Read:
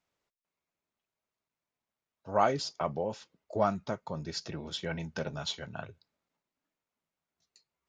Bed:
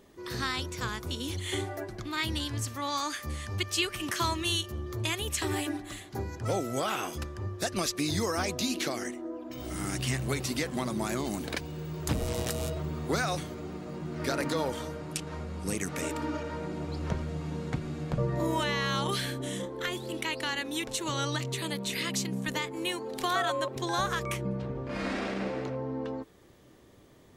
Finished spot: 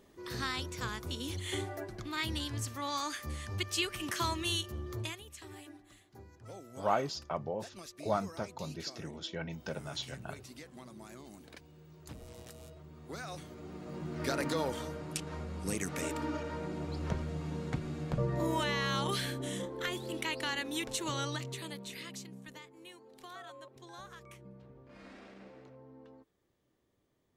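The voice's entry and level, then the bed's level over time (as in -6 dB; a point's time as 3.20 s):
4.50 s, -4.0 dB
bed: 4.99 s -4 dB
5.25 s -18.5 dB
12.87 s -18.5 dB
13.99 s -3 dB
21.05 s -3 dB
22.76 s -20 dB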